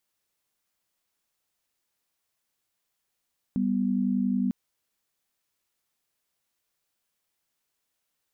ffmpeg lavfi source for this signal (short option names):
-f lavfi -i "aevalsrc='0.0531*(sin(2*PI*196*t)+sin(2*PI*246.94*t))':d=0.95:s=44100"